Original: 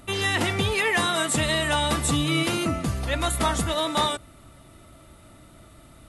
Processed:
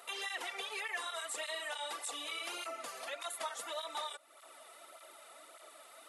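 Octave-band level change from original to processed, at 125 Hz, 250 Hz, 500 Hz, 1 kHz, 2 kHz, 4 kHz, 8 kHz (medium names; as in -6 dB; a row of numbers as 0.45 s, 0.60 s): under -40 dB, -32.0 dB, -17.5 dB, -15.5 dB, -15.0 dB, -14.5 dB, -14.5 dB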